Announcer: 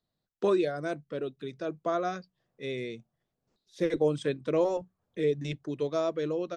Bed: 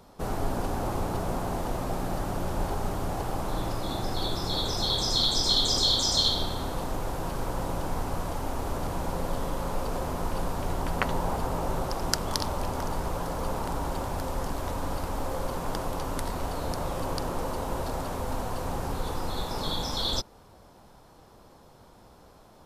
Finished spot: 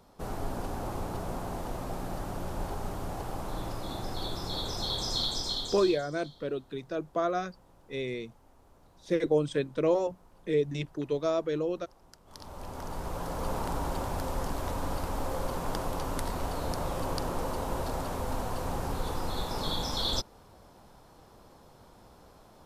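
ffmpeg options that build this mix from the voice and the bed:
-filter_complex "[0:a]adelay=5300,volume=0.5dB[a];[1:a]volume=22dB,afade=t=out:st=5.18:d=0.9:silence=0.0668344,afade=t=in:st=12.25:d=1.31:silence=0.0421697[b];[a][b]amix=inputs=2:normalize=0"

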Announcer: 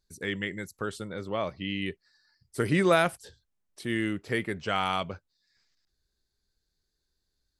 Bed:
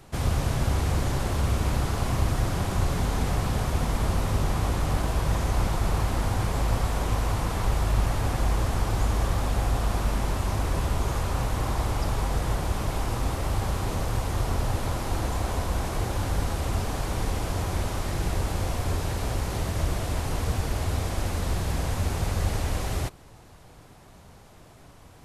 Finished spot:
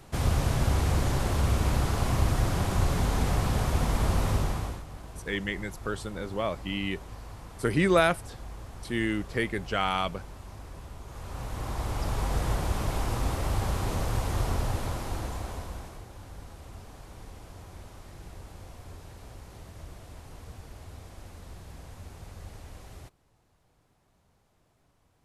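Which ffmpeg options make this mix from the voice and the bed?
-filter_complex "[0:a]adelay=5050,volume=0.5dB[a];[1:a]volume=15.5dB,afade=t=out:st=4.3:d=0.54:silence=0.141254,afade=t=in:st=11.07:d=1.33:silence=0.158489,afade=t=out:st=14.43:d=1.61:silence=0.149624[b];[a][b]amix=inputs=2:normalize=0"

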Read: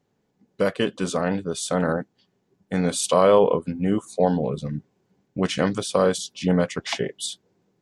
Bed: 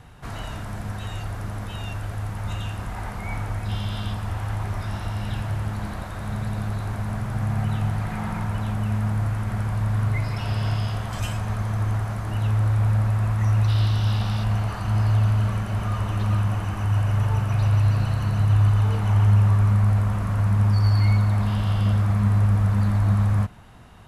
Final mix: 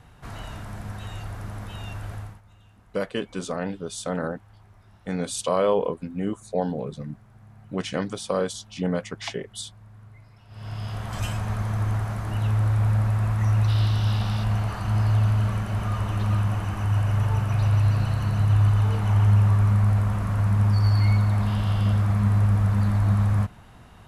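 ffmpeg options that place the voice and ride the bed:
-filter_complex "[0:a]adelay=2350,volume=-5.5dB[a];[1:a]volume=20dB,afade=t=out:st=2.14:d=0.27:silence=0.0891251,afade=t=in:st=10.49:d=0.72:silence=0.0630957[b];[a][b]amix=inputs=2:normalize=0"

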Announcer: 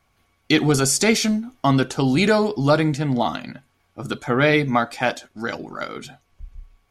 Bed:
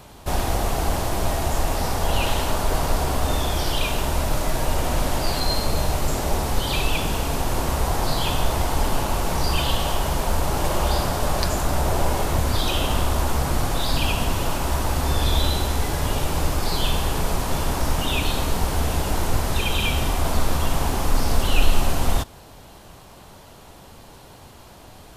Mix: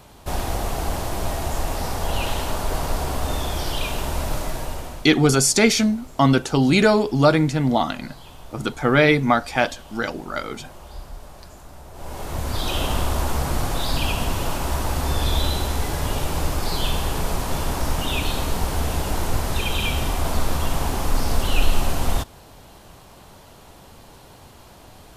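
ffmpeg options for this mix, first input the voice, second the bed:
-filter_complex "[0:a]adelay=4550,volume=1.5dB[a];[1:a]volume=17dB,afade=t=out:st=4.34:d=0.76:silence=0.125893,afade=t=in:st=11.93:d=0.88:silence=0.105925[b];[a][b]amix=inputs=2:normalize=0"

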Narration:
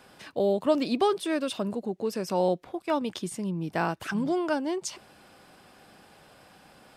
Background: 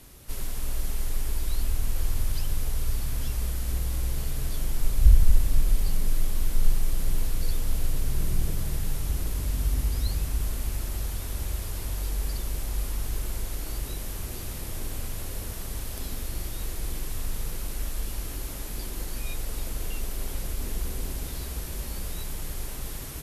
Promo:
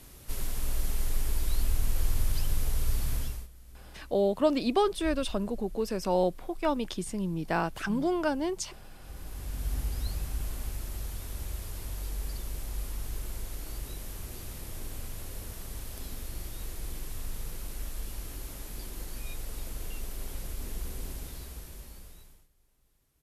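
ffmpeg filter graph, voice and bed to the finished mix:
-filter_complex "[0:a]adelay=3750,volume=-1dB[a];[1:a]volume=15.5dB,afade=t=out:st=3.14:d=0.34:silence=0.0841395,afade=t=in:st=8.99:d=0.76:silence=0.149624,afade=t=out:st=21.1:d=1.38:silence=0.0316228[b];[a][b]amix=inputs=2:normalize=0"

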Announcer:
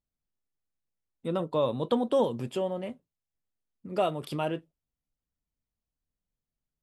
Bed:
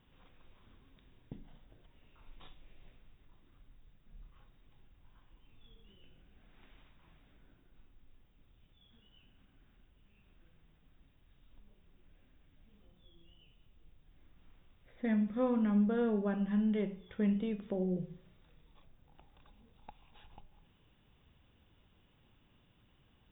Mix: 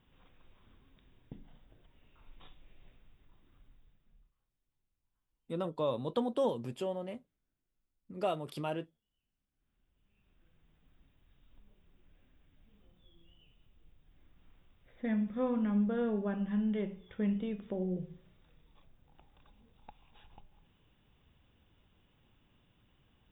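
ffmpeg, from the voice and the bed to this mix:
-filter_complex "[0:a]adelay=4250,volume=-6dB[a];[1:a]volume=21.5dB,afade=t=out:st=3.67:d=0.68:silence=0.0749894,afade=t=in:st=9.51:d=1.42:silence=0.0749894[b];[a][b]amix=inputs=2:normalize=0"

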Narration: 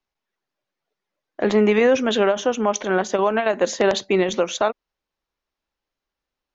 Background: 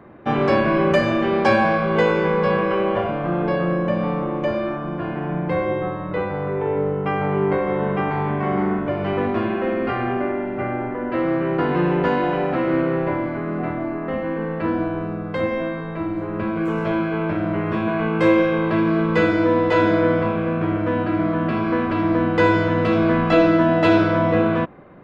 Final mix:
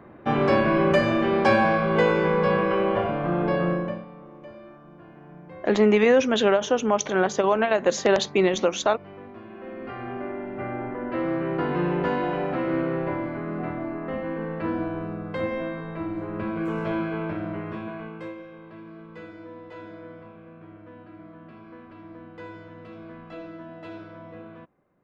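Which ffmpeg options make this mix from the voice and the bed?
-filter_complex "[0:a]adelay=4250,volume=-1.5dB[a];[1:a]volume=13dB,afade=t=out:st=3.68:d=0.37:silence=0.11885,afade=t=in:st=9.46:d=1.46:silence=0.16788,afade=t=out:st=17.03:d=1.32:silence=0.112202[b];[a][b]amix=inputs=2:normalize=0"

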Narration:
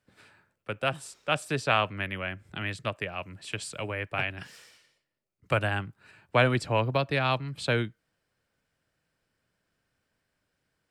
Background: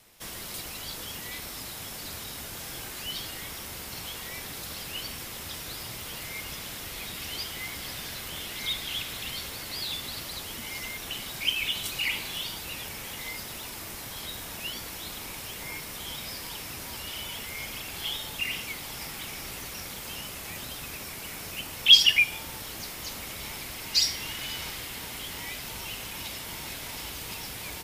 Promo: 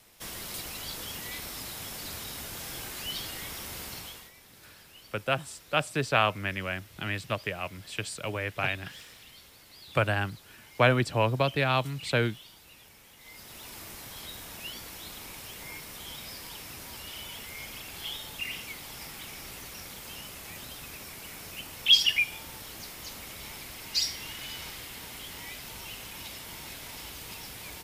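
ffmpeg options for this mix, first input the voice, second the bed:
-filter_complex "[0:a]adelay=4450,volume=0.5dB[a];[1:a]volume=11.5dB,afade=t=out:st=3.85:d=0.47:silence=0.158489,afade=t=in:st=13.19:d=0.57:silence=0.251189[b];[a][b]amix=inputs=2:normalize=0"

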